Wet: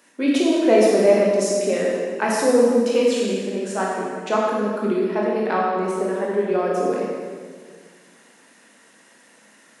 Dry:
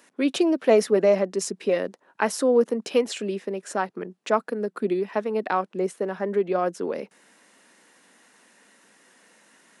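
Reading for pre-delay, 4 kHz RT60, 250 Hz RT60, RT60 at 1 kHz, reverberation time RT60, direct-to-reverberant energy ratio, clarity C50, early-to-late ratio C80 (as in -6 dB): 17 ms, 1.5 s, 2.2 s, 1.6 s, 1.7 s, -4.0 dB, -1.0 dB, 1.0 dB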